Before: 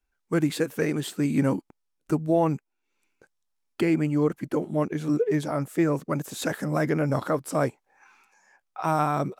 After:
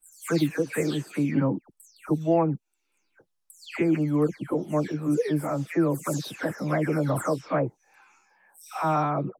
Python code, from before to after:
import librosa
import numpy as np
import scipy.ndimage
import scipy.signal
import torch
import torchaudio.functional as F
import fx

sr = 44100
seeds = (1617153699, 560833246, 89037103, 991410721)

y = fx.spec_delay(x, sr, highs='early', ms=295)